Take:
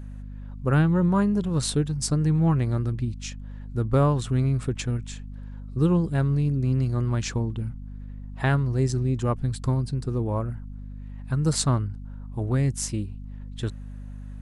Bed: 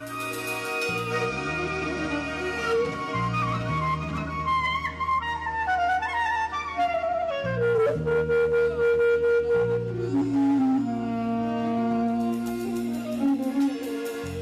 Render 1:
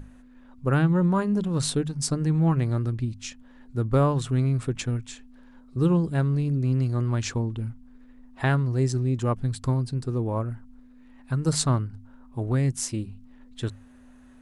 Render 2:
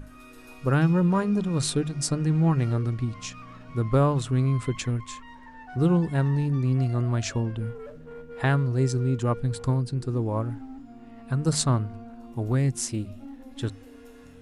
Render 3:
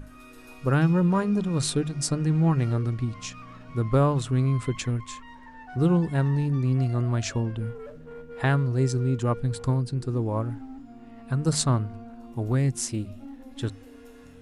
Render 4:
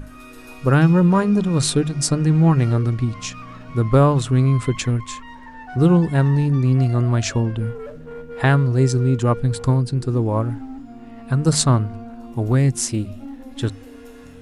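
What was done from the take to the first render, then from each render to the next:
mains-hum notches 50/100/150/200 Hz
mix in bed −19 dB
no processing that can be heard
level +7 dB

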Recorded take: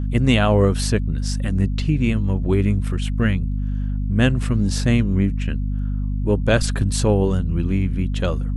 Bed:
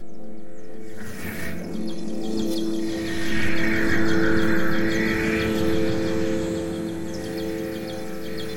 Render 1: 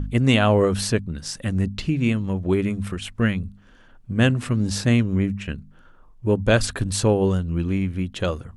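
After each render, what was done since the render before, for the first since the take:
hum removal 50 Hz, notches 5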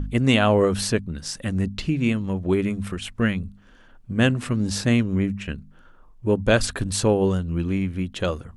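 parametric band 110 Hz −3.5 dB 0.73 octaves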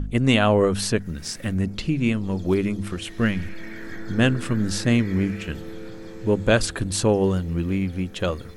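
mix in bed −15 dB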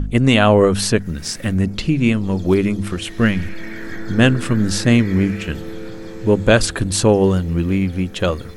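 level +6 dB
brickwall limiter −1 dBFS, peak gain reduction 2.5 dB

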